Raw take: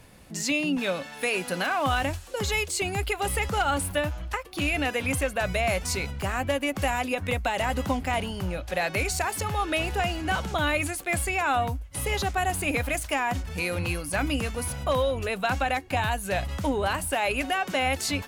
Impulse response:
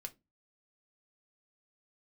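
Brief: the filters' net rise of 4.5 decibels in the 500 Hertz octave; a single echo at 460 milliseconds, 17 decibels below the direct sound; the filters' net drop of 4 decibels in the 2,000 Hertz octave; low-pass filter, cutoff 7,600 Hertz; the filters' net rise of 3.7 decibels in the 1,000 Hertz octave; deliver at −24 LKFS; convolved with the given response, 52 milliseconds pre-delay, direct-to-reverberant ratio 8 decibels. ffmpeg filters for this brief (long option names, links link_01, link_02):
-filter_complex "[0:a]lowpass=7600,equalizer=frequency=500:width_type=o:gain=4.5,equalizer=frequency=1000:width_type=o:gain=4.5,equalizer=frequency=2000:width_type=o:gain=-7,aecho=1:1:460:0.141,asplit=2[link_01][link_02];[1:a]atrim=start_sample=2205,adelay=52[link_03];[link_02][link_03]afir=irnorm=-1:irlink=0,volume=-4dB[link_04];[link_01][link_04]amix=inputs=2:normalize=0,volume=1dB"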